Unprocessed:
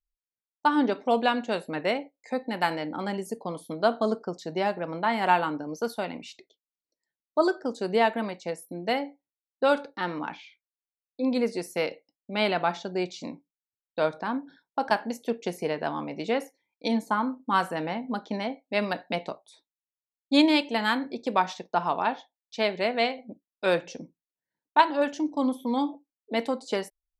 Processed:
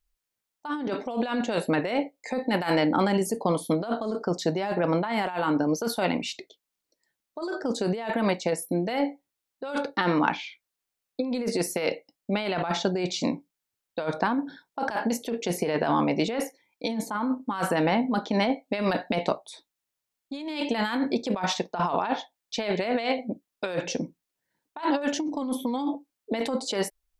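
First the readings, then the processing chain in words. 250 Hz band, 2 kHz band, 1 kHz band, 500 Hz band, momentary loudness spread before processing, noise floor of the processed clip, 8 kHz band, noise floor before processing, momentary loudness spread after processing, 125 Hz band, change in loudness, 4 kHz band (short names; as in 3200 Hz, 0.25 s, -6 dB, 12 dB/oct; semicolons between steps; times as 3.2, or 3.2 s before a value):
+2.0 dB, -1.0 dB, -2.0 dB, 0.0 dB, 11 LU, -85 dBFS, +10.0 dB, under -85 dBFS, 10 LU, +7.0 dB, 0.0 dB, 0.0 dB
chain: negative-ratio compressor -32 dBFS, ratio -1; gain +5.5 dB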